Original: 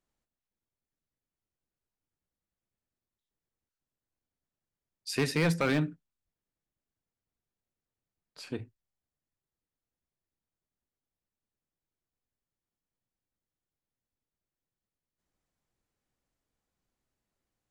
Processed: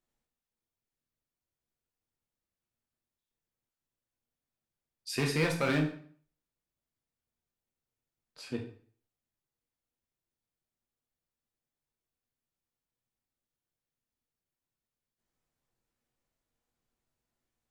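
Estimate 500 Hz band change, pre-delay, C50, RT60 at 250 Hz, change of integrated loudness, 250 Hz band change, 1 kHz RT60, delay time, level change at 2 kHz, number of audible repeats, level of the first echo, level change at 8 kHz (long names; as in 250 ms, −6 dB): −1.0 dB, 8 ms, 8.5 dB, 0.50 s, −1.0 dB, −1.5 dB, 0.50 s, no echo audible, −0.5 dB, no echo audible, no echo audible, −1.0 dB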